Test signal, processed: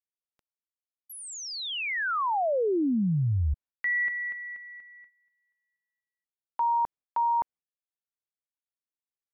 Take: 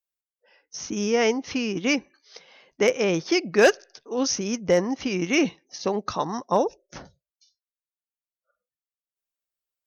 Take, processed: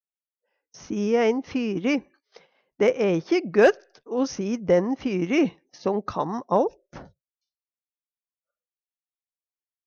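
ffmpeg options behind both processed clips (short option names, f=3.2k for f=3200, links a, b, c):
-af "agate=range=-14dB:threshold=-50dB:ratio=16:detection=peak,lowpass=f=1.3k:p=1,volume=1.5dB"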